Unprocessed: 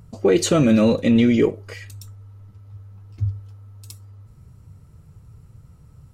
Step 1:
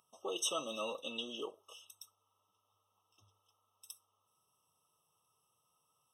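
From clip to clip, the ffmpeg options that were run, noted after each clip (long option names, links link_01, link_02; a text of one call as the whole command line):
ffmpeg -i in.wav -af "highpass=1200,afftfilt=real='re*eq(mod(floor(b*sr/1024/1300),2),0)':imag='im*eq(mod(floor(b*sr/1024/1300),2),0)':win_size=1024:overlap=0.75,volume=-6.5dB" out.wav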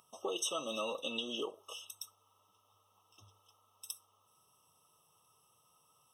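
ffmpeg -i in.wav -af "acompressor=threshold=-44dB:ratio=3,volume=8dB" out.wav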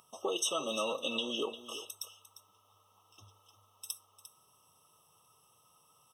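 ffmpeg -i in.wav -af "aecho=1:1:350:0.211,volume=3.5dB" out.wav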